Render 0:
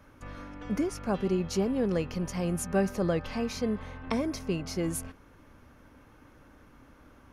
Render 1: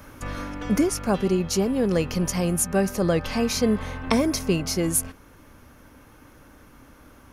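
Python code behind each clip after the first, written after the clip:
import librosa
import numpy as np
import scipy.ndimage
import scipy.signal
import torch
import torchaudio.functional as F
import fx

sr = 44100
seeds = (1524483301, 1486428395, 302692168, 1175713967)

y = fx.high_shelf(x, sr, hz=6200.0, db=11.5)
y = fx.rider(y, sr, range_db=4, speed_s=0.5)
y = F.gain(torch.from_numpy(y), 6.5).numpy()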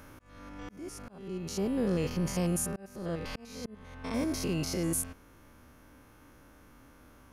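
y = fx.spec_steps(x, sr, hold_ms=100)
y = fx.auto_swell(y, sr, attack_ms=702.0)
y = F.gain(torch.from_numpy(y), -5.0).numpy()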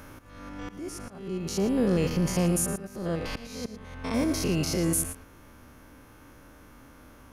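y = x + 10.0 ** (-12.5 / 20.0) * np.pad(x, (int(113 * sr / 1000.0), 0))[:len(x)]
y = F.gain(torch.from_numpy(y), 5.0).numpy()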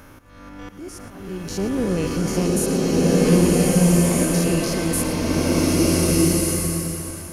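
y = fx.rev_bloom(x, sr, seeds[0], attack_ms=1580, drr_db=-7.5)
y = F.gain(torch.from_numpy(y), 1.5).numpy()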